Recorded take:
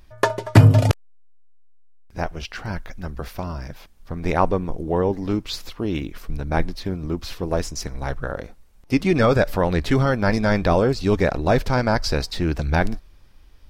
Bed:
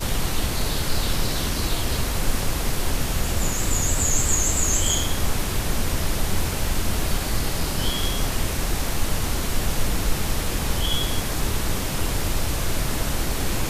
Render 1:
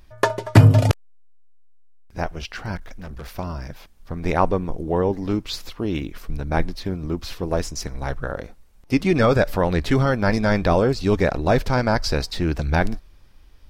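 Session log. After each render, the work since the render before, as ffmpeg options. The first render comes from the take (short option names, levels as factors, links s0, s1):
-filter_complex "[0:a]asettb=1/sr,asplit=3[s0][s1][s2];[s0]atrim=end=2.764[s3];[s1]atrim=start=2.76:end=3.38,asetpts=PTS-STARTPTS,afade=t=in:d=0.004:c=qsin,afade=t=out:st=0.616:d=0.004:c=qsin,asoftclip=type=hard:threshold=0.0266[s4];[s2]atrim=start=3.376[s5];[s3][s4]acrossfade=d=0.004:c1=hsin:c2=qsin[s6];[s6][s5]acrossfade=d=0.004:c1=qsin:c2=hsin"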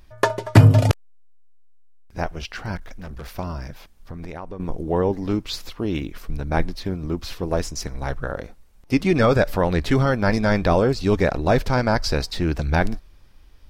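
-filter_complex "[0:a]asettb=1/sr,asplit=3[s0][s1][s2];[s0]atrim=end=3.694[s3];[s1]atrim=start=3.69:end=4.6,asetpts=PTS-STARTPTS,afade=t=in:d=0.004:c=qsin,afade=t=out:st=0.906:d=0.004:c=qsin,acompressor=threshold=0.0355:ratio=12:attack=3.2:release=140:knee=1:detection=peak[s4];[s2]atrim=start=4.596[s5];[s3][s4]acrossfade=d=0.004:c1=hsin:c2=qsin[s6];[s6][s5]acrossfade=d=0.004:c1=qsin:c2=hsin"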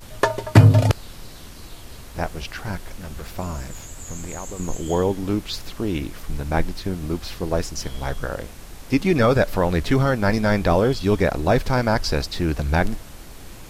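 -filter_complex "[1:a]volume=0.158[s0];[0:a][s0]amix=inputs=2:normalize=0"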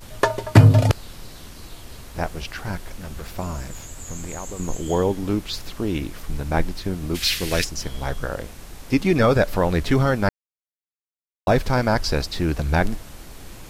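-filter_complex "[0:a]asplit=3[s0][s1][s2];[s0]afade=t=out:st=7.14:d=0.02[s3];[s1]highshelf=f=1500:t=q:w=1.5:g=13.5,afade=t=in:st=7.14:d=0.02,afade=t=out:st=7.63:d=0.02[s4];[s2]afade=t=in:st=7.63:d=0.02[s5];[s3][s4][s5]amix=inputs=3:normalize=0,asplit=3[s6][s7][s8];[s6]atrim=end=10.29,asetpts=PTS-STARTPTS,afade=t=out:st=10.286:d=0.004:c=hsin[s9];[s7]atrim=start=10.29:end=11.47,asetpts=PTS-STARTPTS,volume=0[s10];[s8]atrim=start=11.47,asetpts=PTS-STARTPTS,afade=t=in:d=0.004:c=hsin[s11];[s9][s10][s11]concat=n=3:v=0:a=1"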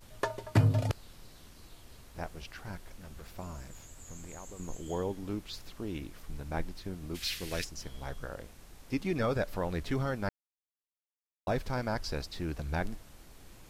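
-af "volume=0.211"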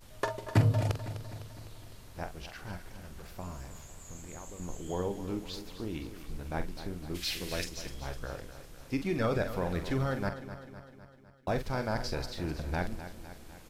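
-filter_complex "[0:a]asplit=2[s0][s1];[s1]adelay=45,volume=0.335[s2];[s0][s2]amix=inputs=2:normalize=0,asplit=2[s3][s4];[s4]aecho=0:1:253|506|759|1012|1265|1518:0.251|0.143|0.0816|0.0465|0.0265|0.0151[s5];[s3][s5]amix=inputs=2:normalize=0"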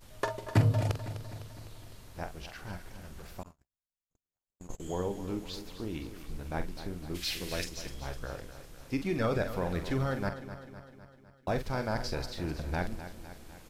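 -filter_complex "[0:a]asettb=1/sr,asplit=3[s0][s1][s2];[s0]atrim=end=3.434[s3];[s1]atrim=start=3.43:end=4.8,asetpts=PTS-STARTPTS,afade=t=in:d=0.004:c=qsin,afade=t=out:st=1.366:d=0.004:c=qsin,agate=range=0.00112:threshold=0.0126:ratio=16:release=100:detection=peak[s4];[s2]atrim=start=4.796[s5];[s3][s4]acrossfade=d=0.004:c1=hsin:c2=qsin[s6];[s6][s5]acrossfade=d=0.004:c1=qsin:c2=hsin"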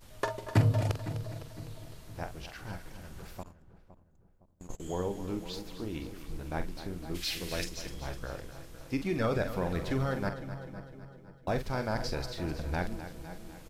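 -filter_complex "[0:a]asplit=2[s0][s1];[s1]adelay=512,lowpass=f=900:p=1,volume=0.237,asplit=2[s2][s3];[s3]adelay=512,lowpass=f=900:p=1,volume=0.47,asplit=2[s4][s5];[s5]adelay=512,lowpass=f=900:p=1,volume=0.47,asplit=2[s6][s7];[s7]adelay=512,lowpass=f=900:p=1,volume=0.47,asplit=2[s8][s9];[s9]adelay=512,lowpass=f=900:p=1,volume=0.47[s10];[s0][s2][s4][s6][s8][s10]amix=inputs=6:normalize=0"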